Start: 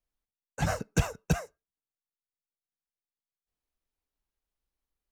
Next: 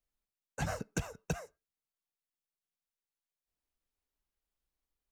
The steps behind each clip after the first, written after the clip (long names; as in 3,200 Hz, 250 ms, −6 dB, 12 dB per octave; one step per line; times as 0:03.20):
downward compressor 10 to 1, threshold −29 dBFS, peak gain reduction 11.5 dB
level −2 dB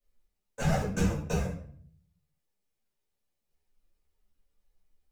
in parallel at −8.5 dB: decimation without filtering 31×
on the sum: rectangular room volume 75 cubic metres, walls mixed, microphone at 1.9 metres
string-ensemble chorus